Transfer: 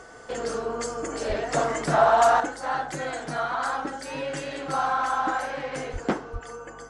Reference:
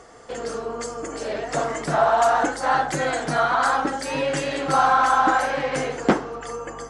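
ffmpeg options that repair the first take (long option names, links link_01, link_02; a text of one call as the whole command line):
ffmpeg -i in.wav -filter_complex "[0:a]bandreject=frequency=1500:width=30,asplit=3[link_01][link_02][link_03];[link_01]afade=type=out:start_time=1.28:duration=0.02[link_04];[link_02]highpass=frequency=140:width=0.5412,highpass=frequency=140:width=1.3066,afade=type=in:start_time=1.28:duration=0.02,afade=type=out:start_time=1.4:duration=0.02[link_05];[link_03]afade=type=in:start_time=1.4:duration=0.02[link_06];[link_04][link_05][link_06]amix=inputs=3:normalize=0,asplit=3[link_07][link_08][link_09];[link_07]afade=type=out:start_time=5.92:duration=0.02[link_10];[link_08]highpass=frequency=140:width=0.5412,highpass=frequency=140:width=1.3066,afade=type=in:start_time=5.92:duration=0.02,afade=type=out:start_time=6.04:duration=0.02[link_11];[link_09]afade=type=in:start_time=6.04:duration=0.02[link_12];[link_10][link_11][link_12]amix=inputs=3:normalize=0,asplit=3[link_13][link_14][link_15];[link_13]afade=type=out:start_time=6.32:duration=0.02[link_16];[link_14]highpass=frequency=140:width=0.5412,highpass=frequency=140:width=1.3066,afade=type=in:start_time=6.32:duration=0.02,afade=type=out:start_time=6.44:duration=0.02[link_17];[link_15]afade=type=in:start_time=6.44:duration=0.02[link_18];[link_16][link_17][link_18]amix=inputs=3:normalize=0,asetnsamples=nb_out_samples=441:pad=0,asendcmd='2.4 volume volume 7.5dB',volume=0dB" out.wav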